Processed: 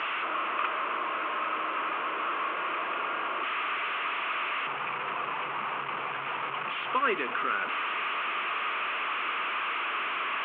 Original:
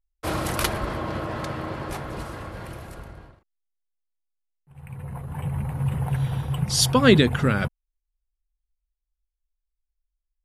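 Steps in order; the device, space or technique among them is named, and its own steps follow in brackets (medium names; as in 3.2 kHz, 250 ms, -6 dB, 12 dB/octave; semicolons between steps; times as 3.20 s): digital answering machine (band-pass 390–3200 Hz; one-bit delta coder 16 kbps, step -20.5 dBFS; cabinet simulation 450–3900 Hz, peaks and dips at 530 Hz -8 dB, 790 Hz -8 dB, 1.2 kHz +9 dB, 1.8 kHz -4 dB, 2.6 kHz +4 dB, 3.8 kHz -7 dB); trim -4.5 dB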